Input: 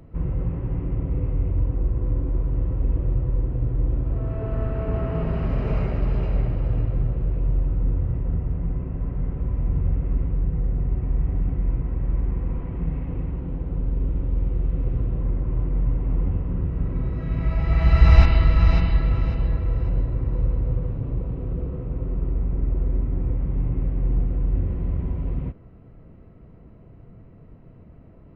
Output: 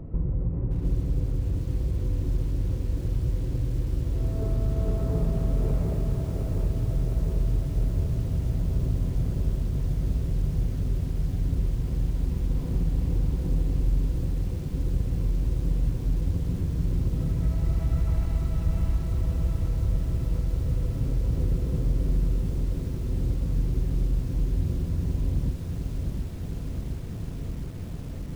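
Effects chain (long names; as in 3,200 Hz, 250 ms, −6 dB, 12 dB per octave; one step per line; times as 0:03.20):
tilt shelving filter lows +8.5 dB, about 1,100 Hz
downward compressor 5 to 1, threshold −24 dBFS, peak gain reduction 23 dB
feedback echo at a low word length 711 ms, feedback 80%, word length 8 bits, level −6 dB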